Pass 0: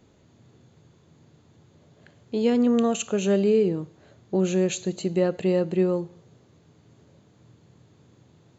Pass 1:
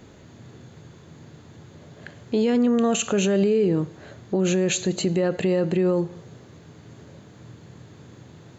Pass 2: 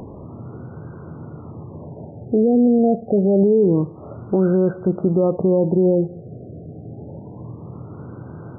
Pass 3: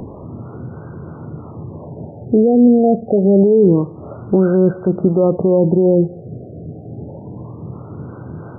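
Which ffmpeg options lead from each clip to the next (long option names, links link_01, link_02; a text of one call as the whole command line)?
ffmpeg -i in.wav -filter_complex "[0:a]asplit=2[link_01][link_02];[link_02]acompressor=threshold=-30dB:ratio=6,volume=0.5dB[link_03];[link_01][link_03]amix=inputs=2:normalize=0,equalizer=frequency=1700:width=2.2:gain=4,alimiter=limit=-17.5dB:level=0:latency=1:release=19,volume=4dB" out.wav
ffmpeg -i in.wav -filter_complex "[0:a]asplit=2[link_01][link_02];[link_02]acompressor=mode=upward:threshold=-25dB:ratio=2.5,volume=-2dB[link_03];[link_01][link_03]amix=inputs=2:normalize=0,afftfilt=real='re*lt(b*sr/1024,750*pow(1600/750,0.5+0.5*sin(2*PI*0.27*pts/sr)))':imag='im*lt(b*sr/1024,750*pow(1600/750,0.5+0.5*sin(2*PI*0.27*pts/sr)))':win_size=1024:overlap=0.75" out.wav
ffmpeg -i in.wav -filter_complex "[0:a]acrossover=split=440[link_01][link_02];[link_01]aeval=exprs='val(0)*(1-0.5/2+0.5/2*cos(2*PI*3*n/s))':channel_layout=same[link_03];[link_02]aeval=exprs='val(0)*(1-0.5/2-0.5/2*cos(2*PI*3*n/s))':channel_layout=same[link_04];[link_03][link_04]amix=inputs=2:normalize=0,volume=6.5dB" out.wav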